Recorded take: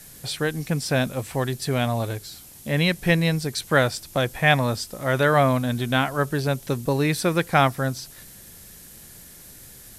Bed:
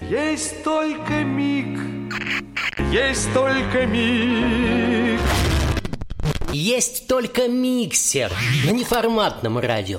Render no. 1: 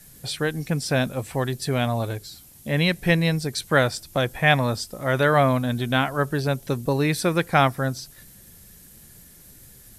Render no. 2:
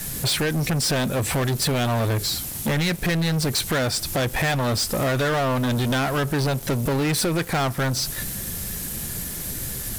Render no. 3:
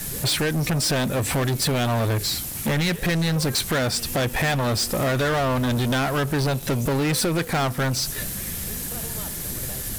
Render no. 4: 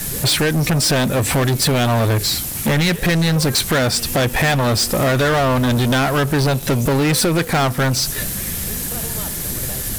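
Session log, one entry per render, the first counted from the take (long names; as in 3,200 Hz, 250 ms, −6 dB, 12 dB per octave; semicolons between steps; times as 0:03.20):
broadband denoise 6 dB, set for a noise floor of −46 dBFS
downward compressor 6 to 1, threshold −29 dBFS, peak gain reduction 15.5 dB; leveller curve on the samples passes 5
mix in bed −22.5 dB
level +6 dB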